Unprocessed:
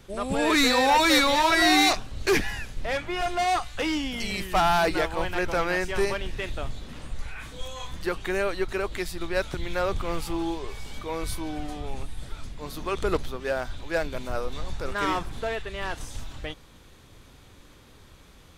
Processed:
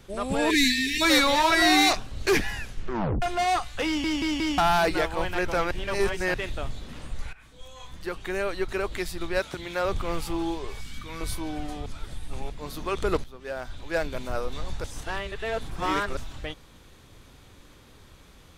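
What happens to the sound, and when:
0.50–1.02 s: spectral selection erased 440–1600 Hz
2.69 s: tape stop 0.53 s
3.86 s: stutter in place 0.18 s, 4 plays
5.71–6.34 s: reverse
7.33–8.80 s: fade in, from -16 dB
9.39–9.85 s: high-pass 200 Hz 6 dB/octave
10.81–11.21 s: high-order bell 580 Hz -13 dB
11.86–12.50 s: reverse
13.24–14.01 s: fade in, from -14.5 dB
14.84–16.17 s: reverse

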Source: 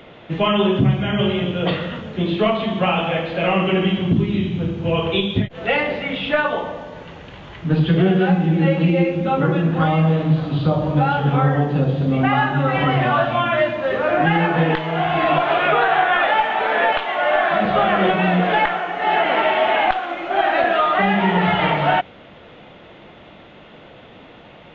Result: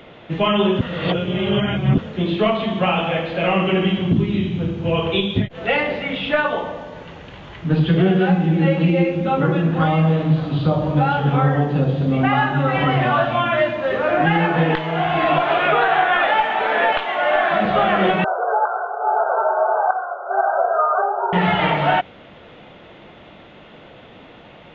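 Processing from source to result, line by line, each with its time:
0.81–1.98 s: reverse
18.24–21.33 s: brick-wall FIR band-pass 380–1600 Hz

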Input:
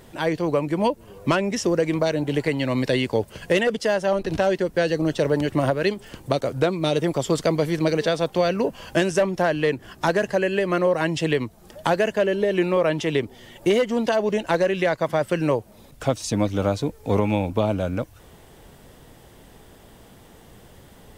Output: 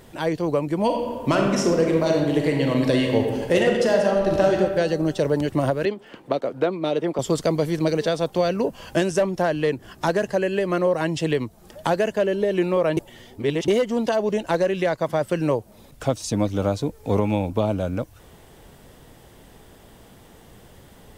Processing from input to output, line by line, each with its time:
0.84–4.57 s: reverb throw, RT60 1.6 s, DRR 0.5 dB
5.85–7.19 s: three-band isolator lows -22 dB, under 180 Hz, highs -16 dB, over 3.7 kHz
12.97–13.68 s: reverse
whole clip: dynamic bell 2.1 kHz, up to -4 dB, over -40 dBFS, Q 0.88

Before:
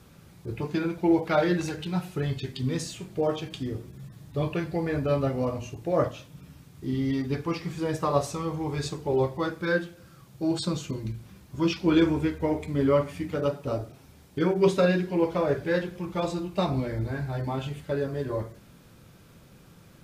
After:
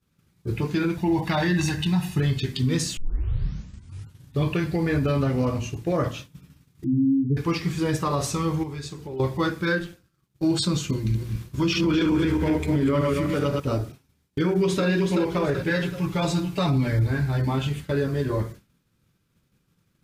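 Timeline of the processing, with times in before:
0.97–2.20 s: comb 1.1 ms
2.97 s: tape start 1.41 s
5.21–5.96 s: loudspeaker Doppler distortion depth 0.11 ms
6.84–7.37 s: spectral contrast enhancement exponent 3.4
8.63–9.20 s: compression 4:1, threshold -38 dBFS
9.79–10.43 s: AM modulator 200 Hz, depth 45%
10.98–13.60 s: backward echo that repeats 127 ms, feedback 47%, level -3.5 dB
14.40–14.86 s: echo throw 380 ms, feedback 35%, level -6.5 dB
15.69–17.07 s: comb 7.1 ms, depth 79%
whole clip: expander -38 dBFS; peaking EQ 650 Hz -8 dB 1.2 oct; peak limiter -22.5 dBFS; trim +8 dB

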